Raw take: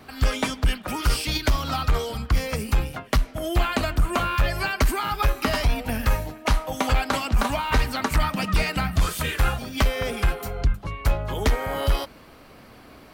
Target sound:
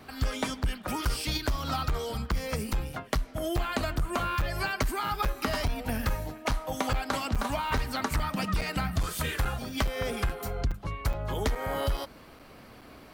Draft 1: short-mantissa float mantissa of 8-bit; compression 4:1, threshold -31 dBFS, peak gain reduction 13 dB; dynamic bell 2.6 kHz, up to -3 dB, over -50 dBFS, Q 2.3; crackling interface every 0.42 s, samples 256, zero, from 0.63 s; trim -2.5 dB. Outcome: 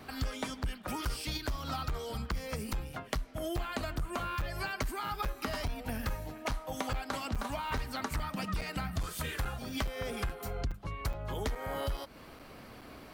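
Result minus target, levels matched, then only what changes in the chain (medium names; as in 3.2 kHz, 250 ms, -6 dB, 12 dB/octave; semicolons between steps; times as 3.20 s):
compression: peak gain reduction +6.5 dB
change: compression 4:1, threshold -22.5 dBFS, peak gain reduction 6.5 dB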